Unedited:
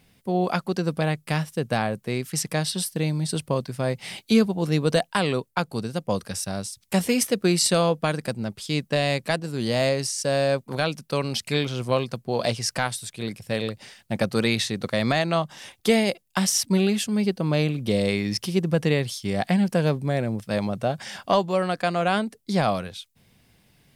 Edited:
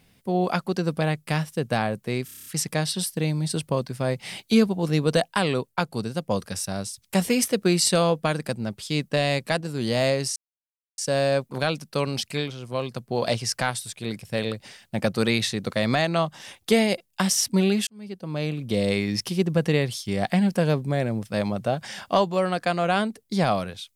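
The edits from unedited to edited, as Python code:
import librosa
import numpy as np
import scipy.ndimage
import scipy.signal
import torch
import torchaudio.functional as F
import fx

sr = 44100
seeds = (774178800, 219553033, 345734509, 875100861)

y = fx.edit(x, sr, fx.stutter(start_s=2.25, slice_s=0.03, count=8),
    fx.insert_silence(at_s=10.15, length_s=0.62),
    fx.fade_down_up(start_s=11.32, length_s=0.95, db=-8.5, fade_s=0.44),
    fx.fade_in_span(start_s=17.04, length_s=1.03), tone=tone)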